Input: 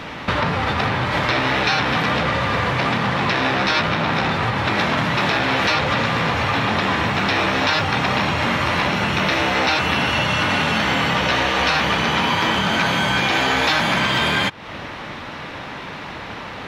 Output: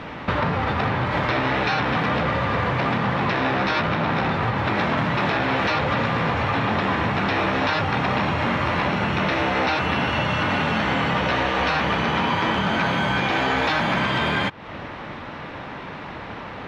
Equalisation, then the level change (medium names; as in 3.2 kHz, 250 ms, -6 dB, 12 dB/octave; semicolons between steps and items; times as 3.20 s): low-pass 1.8 kHz 6 dB/octave; -1.0 dB